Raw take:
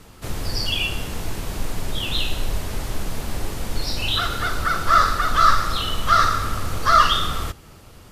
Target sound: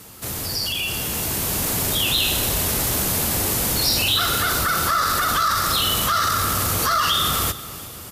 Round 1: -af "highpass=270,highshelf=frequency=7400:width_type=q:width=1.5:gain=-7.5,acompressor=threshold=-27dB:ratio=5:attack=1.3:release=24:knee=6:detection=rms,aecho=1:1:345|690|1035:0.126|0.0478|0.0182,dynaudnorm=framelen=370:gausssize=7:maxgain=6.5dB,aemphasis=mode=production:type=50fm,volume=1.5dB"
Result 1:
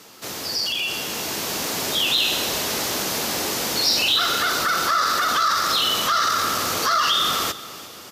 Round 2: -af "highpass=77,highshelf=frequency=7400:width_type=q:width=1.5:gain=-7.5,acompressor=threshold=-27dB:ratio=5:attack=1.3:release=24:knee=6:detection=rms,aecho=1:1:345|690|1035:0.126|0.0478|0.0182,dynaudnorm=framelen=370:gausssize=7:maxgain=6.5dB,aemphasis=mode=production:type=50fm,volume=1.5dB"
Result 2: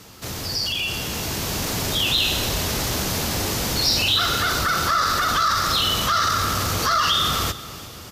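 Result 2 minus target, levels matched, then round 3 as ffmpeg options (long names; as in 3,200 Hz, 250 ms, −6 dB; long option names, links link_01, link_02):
8,000 Hz band −3.0 dB
-af "highpass=77,acompressor=threshold=-27dB:ratio=5:attack=1.3:release=24:knee=6:detection=rms,aecho=1:1:345|690|1035:0.126|0.0478|0.0182,dynaudnorm=framelen=370:gausssize=7:maxgain=6.5dB,aemphasis=mode=production:type=50fm,volume=1.5dB"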